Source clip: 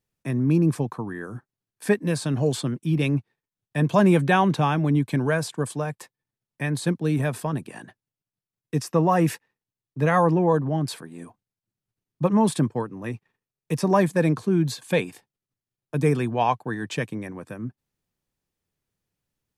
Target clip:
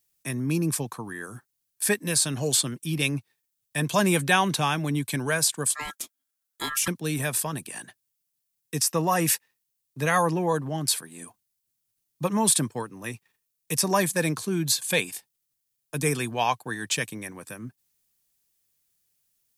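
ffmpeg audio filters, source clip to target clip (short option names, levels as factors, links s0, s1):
-filter_complex "[0:a]crystalizer=i=9:c=0,asettb=1/sr,asplit=3[s0][s1][s2];[s0]atrim=end=5.744[s3];[s1]atrim=start=5.74:end=6.88,asetpts=PTS-STARTPTS,afade=t=in:d=0.004:c=qsin,afade=t=out:st=1.136:d=0.004:c=qsin,aeval=exprs='val(0)*sin(2*PI*1500*n/s)':c=same[s4];[s2]atrim=start=6.876[s5];[s3][s4]acrossfade=d=0.004:c1=hsin:c2=qsin[s6];[s6][s5]acrossfade=d=0.004:c1=qsin:c2=hsin,volume=0.473"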